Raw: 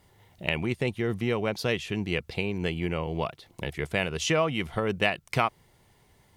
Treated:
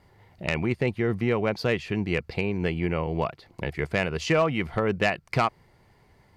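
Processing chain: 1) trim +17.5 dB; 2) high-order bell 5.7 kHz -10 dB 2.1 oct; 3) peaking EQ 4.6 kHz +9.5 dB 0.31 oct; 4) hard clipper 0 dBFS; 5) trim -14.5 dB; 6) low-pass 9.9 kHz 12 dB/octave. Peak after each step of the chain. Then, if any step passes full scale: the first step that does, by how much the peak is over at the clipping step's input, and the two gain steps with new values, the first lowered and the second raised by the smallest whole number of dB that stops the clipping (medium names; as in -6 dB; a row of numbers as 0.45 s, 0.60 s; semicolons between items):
+10.5 dBFS, +9.0 dBFS, +9.5 dBFS, 0.0 dBFS, -14.5 dBFS, -13.5 dBFS; step 1, 9.5 dB; step 1 +7.5 dB, step 5 -4.5 dB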